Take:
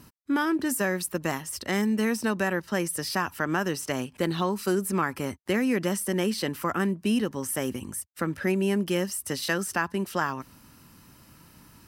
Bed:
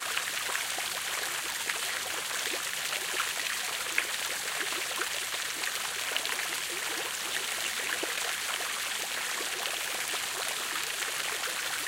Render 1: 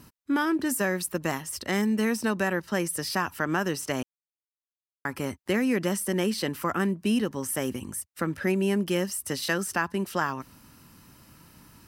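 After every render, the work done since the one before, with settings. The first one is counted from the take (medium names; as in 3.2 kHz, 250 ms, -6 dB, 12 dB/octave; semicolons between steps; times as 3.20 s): 4.03–5.05 s: mute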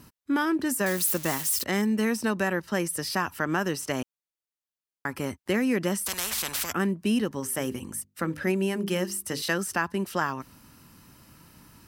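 0.86–1.64 s: zero-crossing glitches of -23 dBFS; 6.06–6.73 s: spectrum-flattening compressor 10:1; 7.40–9.42 s: hum notches 50/100/150/200/250/300/350/400/450/500 Hz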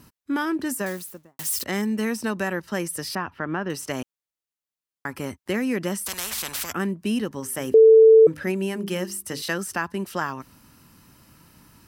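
0.67–1.39 s: studio fade out; 3.15–3.70 s: distance through air 310 m; 7.74–8.27 s: bleep 444 Hz -8 dBFS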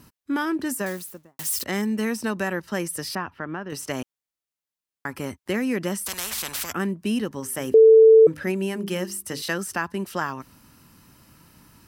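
3.09–3.72 s: fade out, to -7 dB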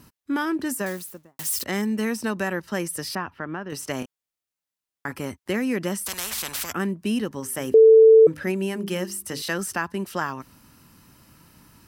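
3.99–5.12 s: doubling 28 ms -7 dB; 9.16–9.73 s: transient shaper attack -1 dB, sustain +4 dB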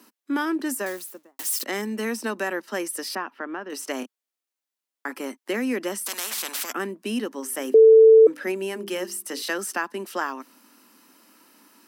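steep high-pass 230 Hz 48 dB/octave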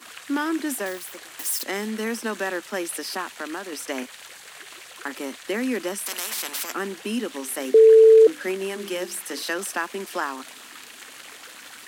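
add bed -10 dB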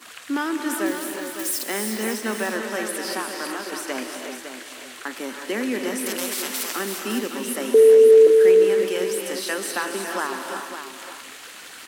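delay 557 ms -9 dB; gated-style reverb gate 390 ms rising, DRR 3.5 dB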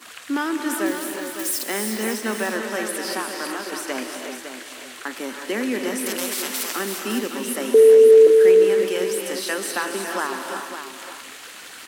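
trim +1 dB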